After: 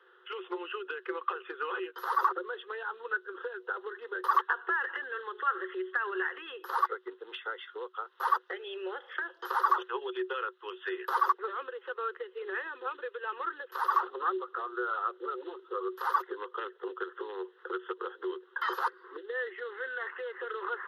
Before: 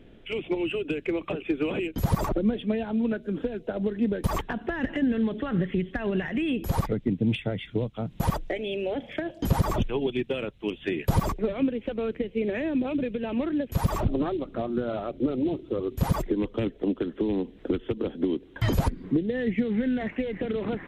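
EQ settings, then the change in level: rippled Chebyshev high-pass 360 Hz, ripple 9 dB; bell 1100 Hz +13 dB 1.9 oct; fixed phaser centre 2300 Hz, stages 6; 0.0 dB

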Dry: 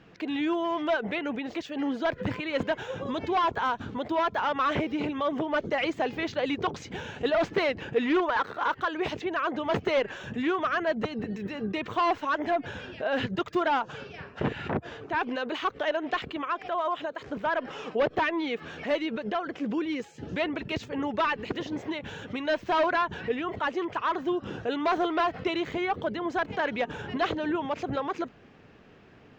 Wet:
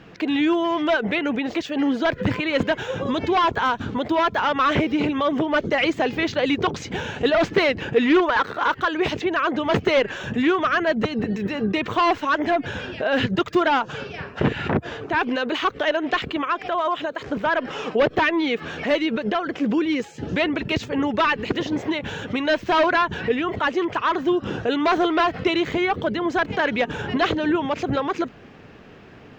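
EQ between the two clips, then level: dynamic EQ 790 Hz, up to -4 dB, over -36 dBFS, Q 0.94; +9.0 dB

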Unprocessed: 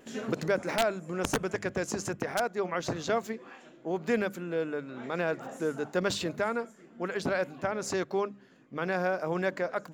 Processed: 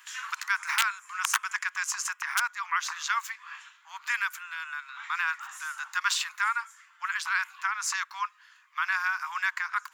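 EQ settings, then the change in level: steep high-pass 990 Hz 72 dB/oct; dynamic EQ 4100 Hz, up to -4 dB, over -55 dBFS, Q 1.9; +8.5 dB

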